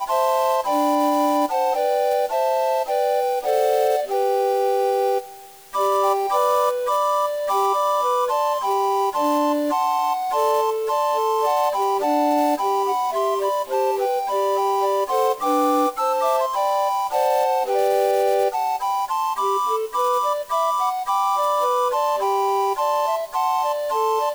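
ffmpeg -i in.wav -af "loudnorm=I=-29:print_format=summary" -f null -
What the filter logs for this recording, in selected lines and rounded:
Input Integrated:    -20.7 LUFS
Input True Peak:      -7.4 dBTP
Input LRA:             0.8 LU
Input Threshold:     -30.7 LUFS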